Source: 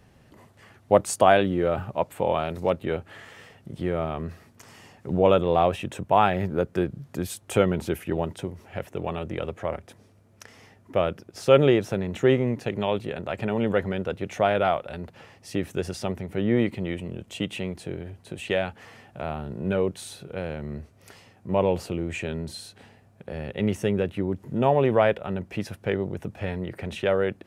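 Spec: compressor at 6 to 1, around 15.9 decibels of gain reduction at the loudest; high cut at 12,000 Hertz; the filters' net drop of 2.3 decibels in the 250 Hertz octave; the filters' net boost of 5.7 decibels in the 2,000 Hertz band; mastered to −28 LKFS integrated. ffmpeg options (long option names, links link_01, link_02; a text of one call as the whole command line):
ffmpeg -i in.wav -af "lowpass=12000,equalizer=frequency=250:width_type=o:gain=-3.5,equalizer=frequency=2000:width_type=o:gain=7.5,acompressor=threshold=-29dB:ratio=6,volume=7dB" out.wav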